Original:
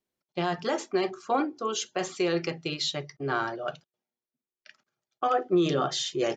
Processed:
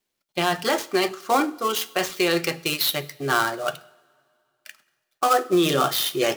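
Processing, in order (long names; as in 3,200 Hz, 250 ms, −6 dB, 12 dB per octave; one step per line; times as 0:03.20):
gap after every zero crossing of 0.073 ms
tilt shelving filter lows −4.5 dB, about 1,100 Hz
coupled-rooms reverb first 0.75 s, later 2.5 s, from −17 dB, DRR 16 dB
level +7.5 dB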